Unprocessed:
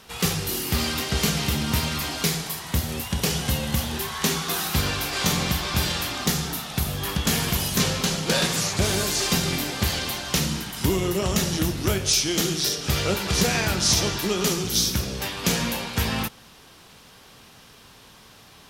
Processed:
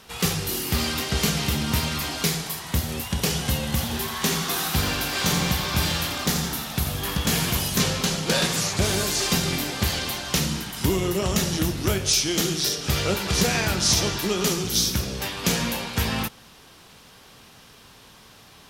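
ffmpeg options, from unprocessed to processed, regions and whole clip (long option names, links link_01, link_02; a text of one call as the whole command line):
ffmpeg -i in.wav -filter_complex "[0:a]asettb=1/sr,asplit=3[link_01][link_02][link_03];[link_01]atrim=end=3.724[link_04];[link_02]atrim=start=3.72:end=7.59,asetpts=PTS-STARTPTS,afade=type=in:duration=0.004:curve=qsin,afade=type=out:start_time=3.866:duration=0.004:curve=qsin,volume=15dB,asoftclip=hard,volume=-15dB,aecho=1:1:85|170|255|340|425|510:0.355|0.185|0.0959|0.0499|0.0259|0.0135,atrim=end_sample=170667[link_05];[link_03]atrim=start=7.586[link_06];[link_04][link_05]acrossfade=duration=0.004:curve1=hsin:curve2=qsin[link_07];[link_07][link_06]acrossfade=duration=0.004:curve1=qsin:curve2=hsin" out.wav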